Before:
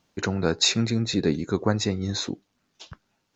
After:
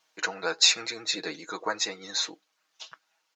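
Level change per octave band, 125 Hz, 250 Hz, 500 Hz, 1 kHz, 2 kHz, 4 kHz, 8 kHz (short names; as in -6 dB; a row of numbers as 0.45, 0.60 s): -28.0 dB, -17.5 dB, -8.5 dB, 0.0 dB, +2.5 dB, +1.5 dB, n/a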